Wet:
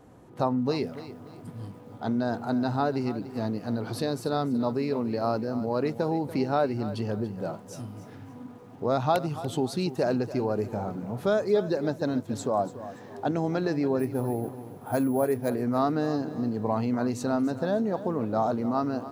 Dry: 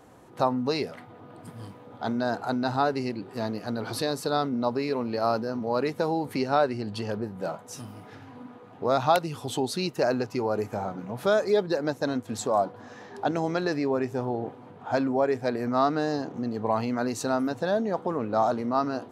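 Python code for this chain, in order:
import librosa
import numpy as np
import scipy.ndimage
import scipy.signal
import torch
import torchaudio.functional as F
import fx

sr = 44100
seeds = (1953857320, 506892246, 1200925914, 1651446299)

y = fx.low_shelf(x, sr, hz=450.0, db=9.5)
y = fx.resample_bad(y, sr, factor=4, down='filtered', up='hold', at=(13.99, 15.5))
y = fx.echo_crushed(y, sr, ms=287, feedback_pct=35, bits=8, wet_db=-14.0)
y = y * 10.0 ** (-5.5 / 20.0)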